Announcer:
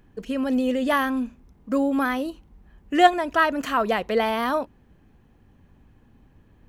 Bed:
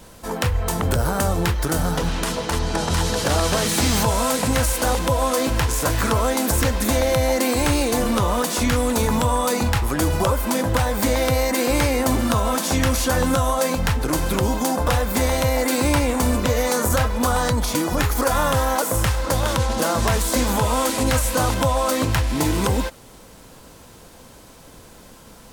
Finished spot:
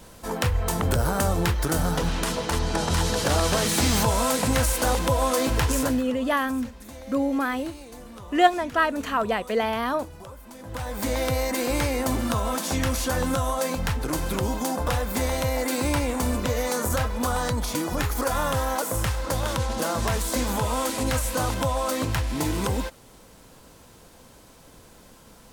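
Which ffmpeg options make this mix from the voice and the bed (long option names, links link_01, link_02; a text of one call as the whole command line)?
ffmpeg -i stem1.wav -i stem2.wav -filter_complex "[0:a]adelay=5400,volume=-2dB[link_01];[1:a]volume=14.5dB,afade=type=out:start_time=5.72:duration=0.31:silence=0.1,afade=type=in:start_time=10.59:duration=0.6:silence=0.141254[link_02];[link_01][link_02]amix=inputs=2:normalize=0" out.wav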